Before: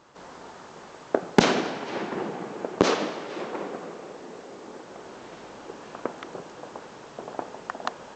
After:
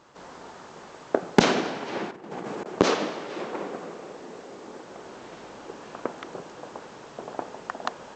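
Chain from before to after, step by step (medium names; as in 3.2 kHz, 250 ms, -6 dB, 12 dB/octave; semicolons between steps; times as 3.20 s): 2.08–2.66 s: compressor with a negative ratio -36 dBFS, ratio -0.5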